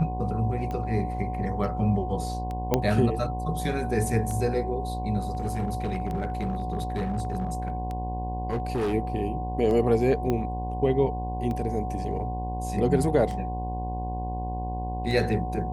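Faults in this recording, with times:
mains buzz 60 Hz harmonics 18 −32 dBFS
scratch tick 33 1/3 rpm −22 dBFS
whistle 740 Hz −33 dBFS
0:02.74: click −8 dBFS
0:05.30–0:08.94: clipping −23 dBFS
0:10.30: click −15 dBFS

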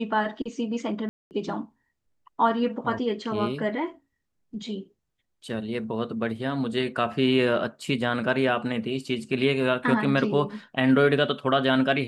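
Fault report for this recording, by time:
0:01.09–0:01.31: drop-out 219 ms

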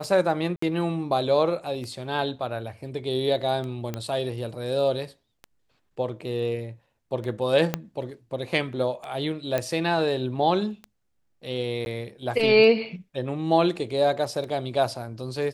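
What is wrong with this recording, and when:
scratch tick 33 1/3 rpm
0:00.56–0:00.62: drop-out 64 ms
0:03.94: click −16 dBFS
0:07.74: click −10 dBFS
0:09.58: click −12 dBFS
0:11.85–0:11.86: drop-out 11 ms

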